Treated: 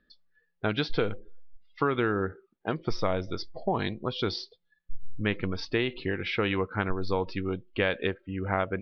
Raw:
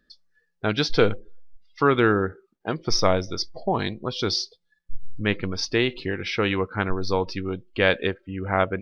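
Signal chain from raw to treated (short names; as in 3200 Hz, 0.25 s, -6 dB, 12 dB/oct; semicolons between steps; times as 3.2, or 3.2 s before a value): compressor 6:1, threshold -20 dBFS, peak gain reduction 8.5 dB; LPF 3900 Hz 24 dB/oct; gain -2 dB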